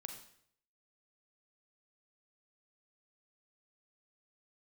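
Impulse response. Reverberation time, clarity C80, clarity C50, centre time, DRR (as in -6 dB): 0.65 s, 9.5 dB, 6.5 dB, 23 ms, 4.0 dB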